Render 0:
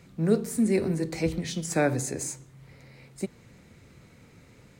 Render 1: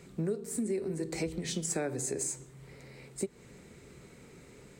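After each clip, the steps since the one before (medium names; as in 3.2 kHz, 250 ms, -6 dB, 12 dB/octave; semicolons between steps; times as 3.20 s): graphic EQ with 31 bands 100 Hz -10 dB, 400 Hz +9 dB, 8 kHz +8 dB; compression 10:1, threshold -30 dBFS, peak gain reduction 18 dB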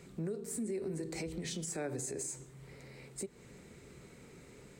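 peak limiter -29 dBFS, peak gain reduction 7.5 dB; trim -1.5 dB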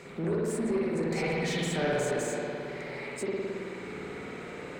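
spring tank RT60 2.4 s, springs 54 ms, chirp 25 ms, DRR -6.5 dB; overdrive pedal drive 20 dB, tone 2 kHz, clips at -19 dBFS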